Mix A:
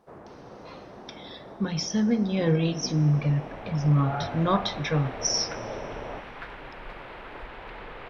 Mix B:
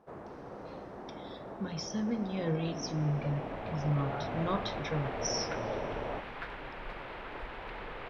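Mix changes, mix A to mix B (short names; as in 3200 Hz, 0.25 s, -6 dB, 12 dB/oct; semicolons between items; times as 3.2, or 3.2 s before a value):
speech -9.5 dB; second sound: send -11.5 dB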